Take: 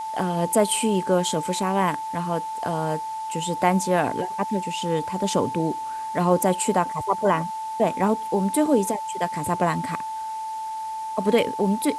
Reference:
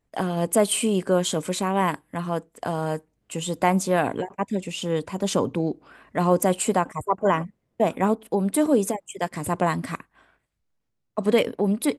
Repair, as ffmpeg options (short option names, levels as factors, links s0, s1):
-af "bandreject=f=880:w=30,afwtdn=0.0045"